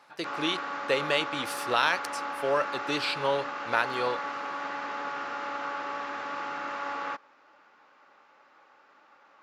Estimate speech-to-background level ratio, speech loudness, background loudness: 5.0 dB, −29.5 LKFS, −34.5 LKFS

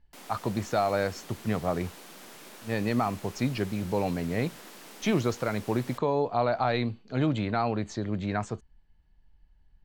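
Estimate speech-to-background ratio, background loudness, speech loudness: 17.0 dB, −46.5 LKFS, −29.5 LKFS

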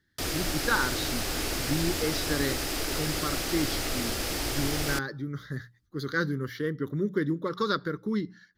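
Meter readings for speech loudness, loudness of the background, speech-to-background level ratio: −32.0 LKFS, −30.0 LKFS, −2.0 dB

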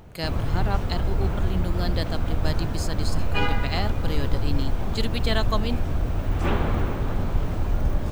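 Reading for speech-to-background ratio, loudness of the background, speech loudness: −4.5 dB, −27.5 LKFS, −32.0 LKFS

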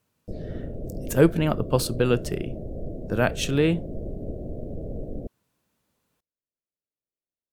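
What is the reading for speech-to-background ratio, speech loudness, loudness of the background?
12.0 dB, −24.0 LKFS, −36.0 LKFS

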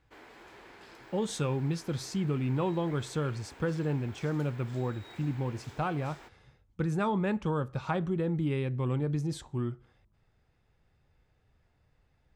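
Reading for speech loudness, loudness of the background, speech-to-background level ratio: −32.5 LKFS, −51.5 LKFS, 19.0 dB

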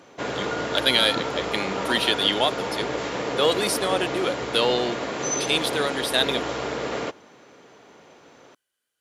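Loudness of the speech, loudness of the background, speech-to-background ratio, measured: −24.0 LKFS, −28.5 LKFS, 4.5 dB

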